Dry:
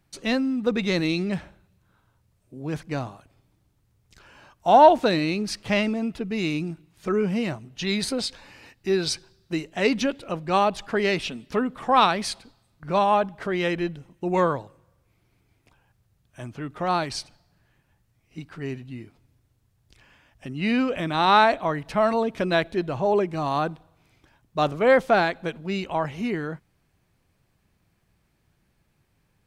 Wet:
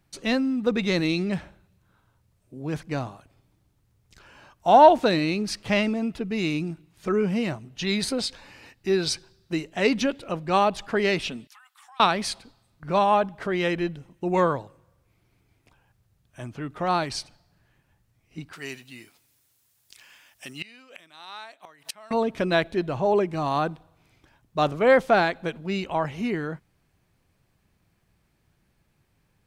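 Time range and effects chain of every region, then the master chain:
0:11.47–0:12.00: linear-phase brick-wall high-pass 720 Hz + first difference + downward compressor, threshold −48 dBFS
0:18.53–0:22.11: spectral tilt +4.5 dB per octave + gate with flip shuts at −19 dBFS, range −25 dB
whole clip: no processing

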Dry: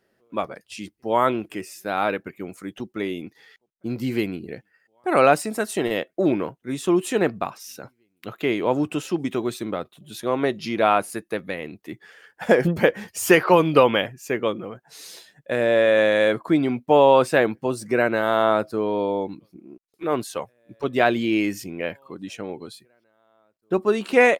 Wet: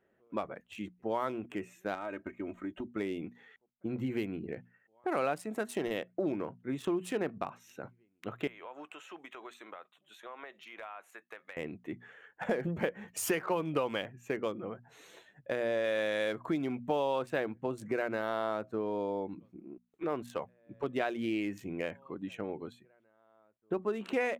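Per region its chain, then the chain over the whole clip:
0:01.94–0:02.88: running median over 9 samples + comb filter 3.2 ms, depth 72% + downward compressor 5 to 1, threshold −29 dBFS
0:08.47–0:11.57: high-pass filter 980 Hz + downward compressor 8 to 1, threshold −36 dBFS
0:15.84–0:17.19: high-shelf EQ 3,300 Hz +8 dB + upward compression, threshold −28 dBFS
whole clip: adaptive Wiener filter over 9 samples; mains-hum notches 60/120/180/240 Hz; downward compressor 3 to 1, threshold −28 dBFS; level −4 dB

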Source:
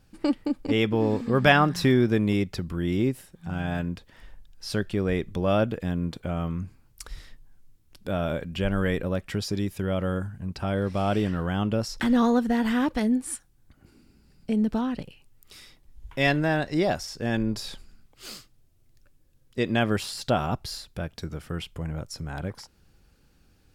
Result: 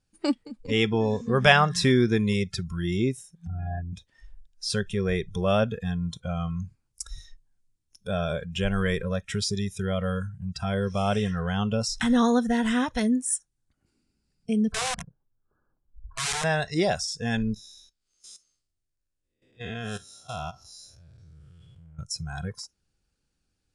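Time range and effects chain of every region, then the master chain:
0:03.47–0:03.93: spectral envelope exaggerated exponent 2 + high-frequency loss of the air 270 metres + comb filter 2.9 ms, depth 74%
0:14.72–0:16.44: linear-phase brick-wall low-pass 1,700 Hz + wrap-around overflow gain 26 dB
0:17.54–0:21.99: spectrum smeared in time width 270 ms + parametric band 170 Hz −4 dB 1 octave + output level in coarse steps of 16 dB
whole clip: Butterworth low-pass 9,900 Hz 48 dB per octave; noise reduction from a noise print of the clip's start 17 dB; high-shelf EQ 4,300 Hz +10 dB

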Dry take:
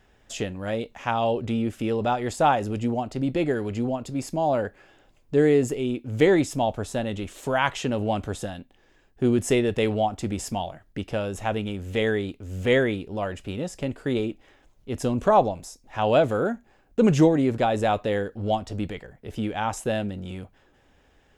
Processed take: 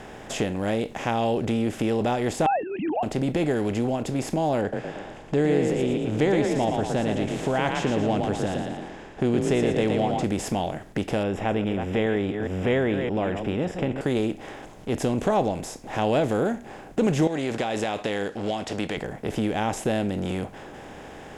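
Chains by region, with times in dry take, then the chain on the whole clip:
0:02.46–0:03.03: three sine waves on the formant tracks + comb filter 1.2 ms, depth 49%
0:04.61–0:10.24: high-frequency loss of the air 74 metres + echo with shifted repeats 115 ms, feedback 33%, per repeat +31 Hz, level −6.5 dB
0:11.23–0:14.01: delay that plays each chunk backwards 207 ms, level −13 dB + Savitzky-Golay smoothing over 25 samples
0:17.27–0:18.97: low-pass filter 4,600 Hz + spectral tilt +4 dB per octave + downward compressor, threshold −26 dBFS
whole clip: compressor on every frequency bin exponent 0.6; dynamic equaliser 1,100 Hz, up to −5 dB, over −34 dBFS, Q 0.91; downward compressor 1.5 to 1, threshold −23 dBFS; level −1 dB

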